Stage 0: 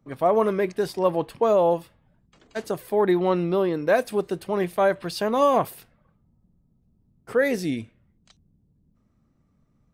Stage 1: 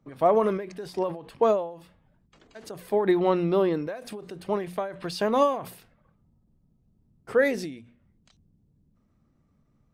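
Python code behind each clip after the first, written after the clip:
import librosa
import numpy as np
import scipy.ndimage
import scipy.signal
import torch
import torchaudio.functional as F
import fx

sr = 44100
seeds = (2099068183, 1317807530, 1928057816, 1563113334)

y = fx.high_shelf(x, sr, hz=11000.0, db=-9.5)
y = fx.hum_notches(y, sr, base_hz=60, count=4)
y = fx.end_taper(y, sr, db_per_s=100.0)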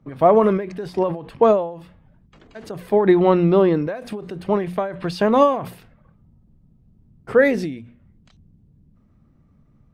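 y = fx.bass_treble(x, sr, bass_db=5, treble_db=-8)
y = y * librosa.db_to_amplitude(6.5)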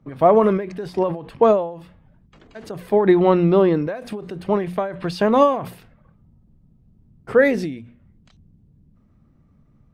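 y = x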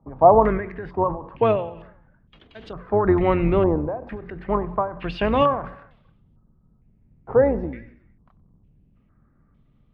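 y = fx.octave_divider(x, sr, octaves=2, level_db=-3.0)
y = fx.echo_feedback(y, sr, ms=93, feedback_pct=54, wet_db=-20)
y = fx.filter_held_lowpass(y, sr, hz=2.2, low_hz=880.0, high_hz=3300.0)
y = y * librosa.db_to_amplitude(-5.0)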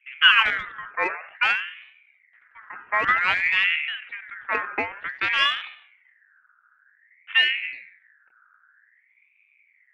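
y = fx.wiener(x, sr, points=15)
y = fx.env_lowpass(y, sr, base_hz=580.0, full_db=-13.5)
y = fx.ring_lfo(y, sr, carrier_hz=1900.0, swing_pct=25, hz=0.53)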